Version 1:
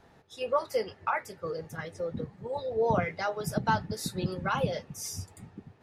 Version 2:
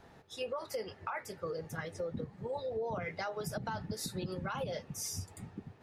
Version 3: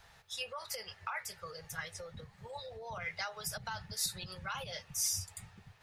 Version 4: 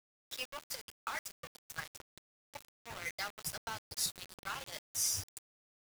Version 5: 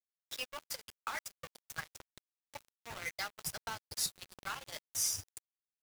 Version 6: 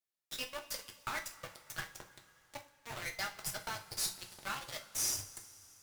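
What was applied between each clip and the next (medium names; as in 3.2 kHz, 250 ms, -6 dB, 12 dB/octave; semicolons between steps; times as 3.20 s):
peak limiter -24 dBFS, peak gain reduction 10 dB; compression 2.5:1, threshold -38 dBFS, peak gain reduction 7.5 dB; trim +1 dB
amplifier tone stack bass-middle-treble 10-0-10; trim +7.5 dB
small samples zeroed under -38.5 dBFS
transient shaper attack +1 dB, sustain -11 dB
valve stage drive 32 dB, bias 0.5; reverberation, pre-delay 3 ms, DRR 3 dB; trim +2.5 dB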